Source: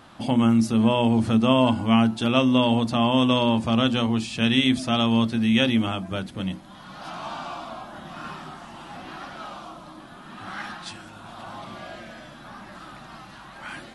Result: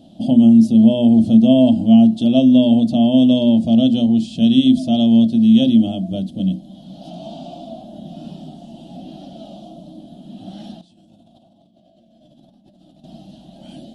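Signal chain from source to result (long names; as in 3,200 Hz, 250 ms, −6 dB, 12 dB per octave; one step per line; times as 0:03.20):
drawn EQ curve 120 Hz 0 dB, 180 Hz +11 dB, 290 Hz +9 dB, 430 Hz −5 dB, 660 Hz +7 dB, 1,100 Hz −29 dB, 2,200 Hz −24 dB, 3,100 Hz 0 dB, 6,000 Hz −5 dB
0:10.81–0:13.04: compressor whose output falls as the input rises −52 dBFS, ratio −1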